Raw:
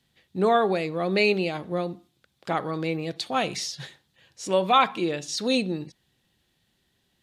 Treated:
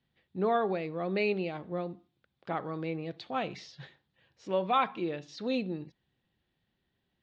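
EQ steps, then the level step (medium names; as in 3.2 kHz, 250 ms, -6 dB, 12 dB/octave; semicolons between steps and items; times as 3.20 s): distance through air 180 m; treble shelf 7.7 kHz -12 dB; -6.5 dB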